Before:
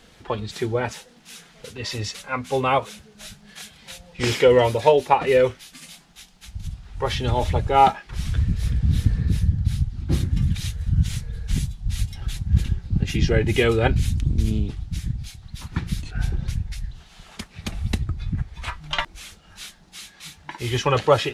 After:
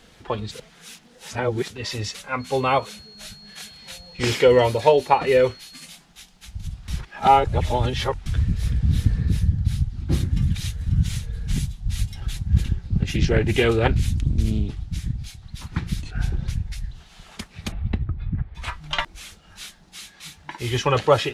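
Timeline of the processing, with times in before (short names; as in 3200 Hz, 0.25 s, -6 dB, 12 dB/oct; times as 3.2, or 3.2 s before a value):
0.54–1.7 reverse
2.39–5.84 whine 4300 Hz -44 dBFS
6.88–8.26 reverse
10.26–11.11 echo throw 0.54 s, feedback 20%, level -11.5 dB
12.69–16.66 Doppler distortion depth 0.36 ms
17.72–18.55 air absorption 440 m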